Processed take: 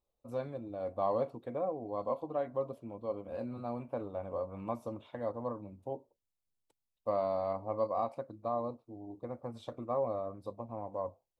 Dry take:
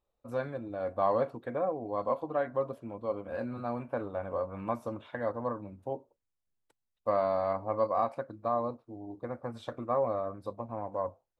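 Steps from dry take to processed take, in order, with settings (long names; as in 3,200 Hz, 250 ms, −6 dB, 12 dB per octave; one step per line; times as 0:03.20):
parametric band 1,600 Hz −11.5 dB 0.65 octaves
level −3 dB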